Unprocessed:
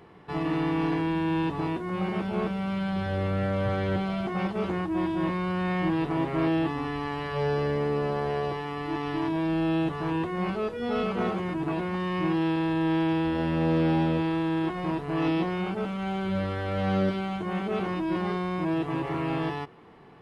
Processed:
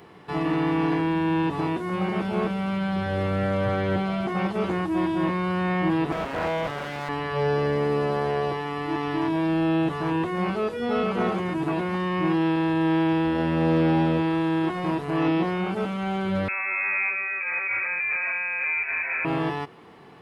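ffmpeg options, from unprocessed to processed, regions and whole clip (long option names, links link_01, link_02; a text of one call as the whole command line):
ffmpeg -i in.wav -filter_complex "[0:a]asettb=1/sr,asplit=3[link_01][link_02][link_03];[link_01]atrim=end=6.124[link_04];[link_02]atrim=start=6.12:end=7.09,asetpts=PTS-STARTPTS,afade=type=in:duration=0.004:curve=qsin,afade=type=out:start_time=0.966:duration=0.004:curve=qsin,bandreject=frequency=50:width_type=h:width=6,bandreject=frequency=100:width_type=h:width=6,bandreject=frequency=150:width_type=h:width=6,bandreject=frequency=200:width_type=h:width=6,bandreject=frequency=250:width_type=h:width=6,bandreject=frequency=300:width_type=h:width=6,aeval=exprs='abs(val(0))':channel_layout=same[link_05];[link_03]atrim=start=7.086[link_06];[link_04][link_05]acrossfade=duration=0.004:curve1=hsin:curve2=qsin[link_07];[link_07][link_06]acrossfade=duration=0.004:curve1=qsin:curve2=hsin,asettb=1/sr,asplit=3[link_08][link_09][link_10];[link_08]atrim=end=16.484[link_11];[link_09]atrim=start=16.48:end=19.25,asetpts=PTS-STARTPTS,afade=type=in:duration=0.004:curve=qsin,afade=type=out:start_time=2.766:duration=0.004:curve=qsin,asoftclip=type=hard:threshold=-24.5dB,lowpass=frequency=2300:width_type=q:width=0.5098,lowpass=frequency=2300:width_type=q:width=0.6013,lowpass=frequency=2300:width_type=q:width=0.9,lowpass=frequency=2300:width_type=q:width=2.563,afreqshift=-2700[link_12];[link_10]atrim=start=19.246[link_13];[link_11][link_12]acrossfade=duration=0.004:curve1=hsin:curve2=qsin[link_14];[link_14][link_13]acrossfade=duration=0.004:curve1=qsin:curve2=hsin,highpass=frequency=93:poles=1,acrossover=split=2600[link_15][link_16];[link_16]acompressor=threshold=-52dB:ratio=4:attack=1:release=60[link_17];[link_15][link_17]amix=inputs=2:normalize=0,highshelf=frequency=3700:gain=7.5,volume=3.5dB" out.wav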